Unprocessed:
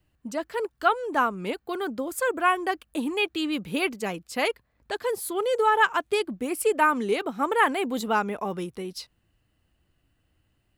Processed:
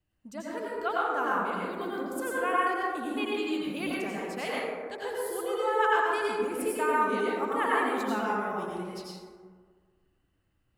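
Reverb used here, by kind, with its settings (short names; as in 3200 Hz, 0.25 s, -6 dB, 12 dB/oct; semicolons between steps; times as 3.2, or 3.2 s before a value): plate-style reverb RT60 1.7 s, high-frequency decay 0.35×, pre-delay 75 ms, DRR -6 dB; gain -11 dB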